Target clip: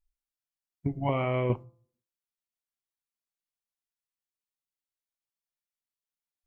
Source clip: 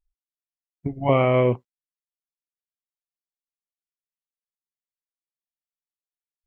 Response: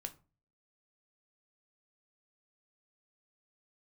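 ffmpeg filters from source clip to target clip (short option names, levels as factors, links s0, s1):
-filter_complex "[0:a]equalizer=f=480:t=o:w=0.65:g=-5,bandreject=f=170.5:t=h:w=4,bandreject=f=341:t=h:w=4,bandreject=f=511.5:t=h:w=4,bandreject=f=682:t=h:w=4,bandreject=f=852.5:t=h:w=4,bandreject=f=1023:t=h:w=4,bandreject=f=1193.5:t=h:w=4,bandreject=f=1364:t=h:w=4,asettb=1/sr,asplit=3[s0][s1][s2];[s0]atrim=end=1.024[s3];[s1]atrim=start=1.02:end=1.5,asetpts=PTS-STARTPTS,afade=t=in:d=0.004:c=qsin,afade=t=out:st=0.476:d=0.004:c=qsin,acompressor=threshold=0.0708:ratio=6[s4];[s2]atrim=start=1.496[s5];[s3][s4]acrossfade=d=0.004:c1=hsin:c2=qsin[s6];[s6][s5]acrossfade=d=0.004:c1=qsin:c2=hsin,asplit=2[s7][s8];[1:a]atrim=start_sample=2205[s9];[s8][s9]afir=irnorm=-1:irlink=0,volume=0.562[s10];[s7][s10]amix=inputs=2:normalize=0,volume=0.631"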